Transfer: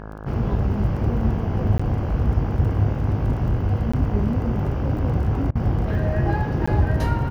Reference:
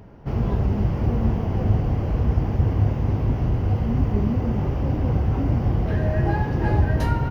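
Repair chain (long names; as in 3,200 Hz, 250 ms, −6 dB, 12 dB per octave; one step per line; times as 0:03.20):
click removal
hum removal 52.7 Hz, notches 32
repair the gap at 0:01.78/0:03.92/0:06.66, 15 ms
repair the gap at 0:05.51, 42 ms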